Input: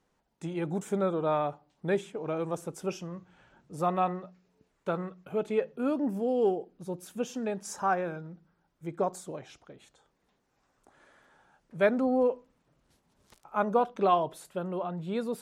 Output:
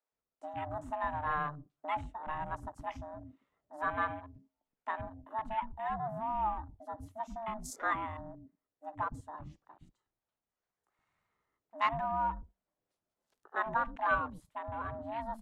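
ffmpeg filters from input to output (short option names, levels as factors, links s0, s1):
-filter_complex "[0:a]aeval=exprs='val(0)*sin(2*PI*450*n/s)':c=same,acrossover=split=600|3200[s0][s1][s2];[s0]acompressor=threshold=0.00794:ratio=6[s3];[s3][s1][s2]amix=inputs=3:normalize=0,afwtdn=0.00398,acrossover=split=320[s4][s5];[s4]adelay=120[s6];[s6][s5]amix=inputs=2:normalize=0"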